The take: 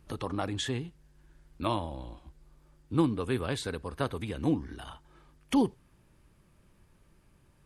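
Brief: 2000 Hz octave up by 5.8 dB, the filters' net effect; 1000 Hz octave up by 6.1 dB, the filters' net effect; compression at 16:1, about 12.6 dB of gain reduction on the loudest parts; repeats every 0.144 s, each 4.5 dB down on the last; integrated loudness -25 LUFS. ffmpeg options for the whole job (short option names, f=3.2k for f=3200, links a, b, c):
-af "equalizer=f=1k:t=o:g=6,equalizer=f=2k:t=o:g=5.5,acompressor=threshold=-32dB:ratio=16,aecho=1:1:144|288|432|576|720|864|1008|1152|1296:0.596|0.357|0.214|0.129|0.0772|0.0463|0.0278|0.0167|0.01,volume=13dB"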